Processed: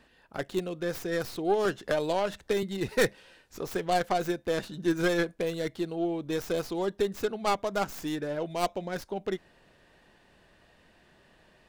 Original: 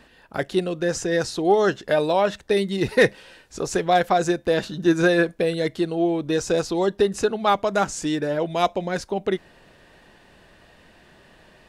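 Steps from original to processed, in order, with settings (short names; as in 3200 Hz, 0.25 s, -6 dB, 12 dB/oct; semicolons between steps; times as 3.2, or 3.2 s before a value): tracing distortion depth 0.23 ms; 1.65–2.63 three-band squash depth 70%; gain -8.5 dB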